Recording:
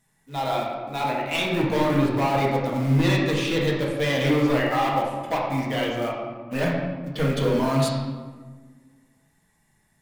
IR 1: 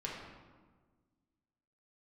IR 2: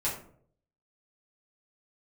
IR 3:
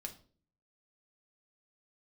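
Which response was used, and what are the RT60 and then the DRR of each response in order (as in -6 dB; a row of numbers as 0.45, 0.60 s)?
1; 1.5, 0.60, 0.45 s; -4.0, -7.5, 3.0 dB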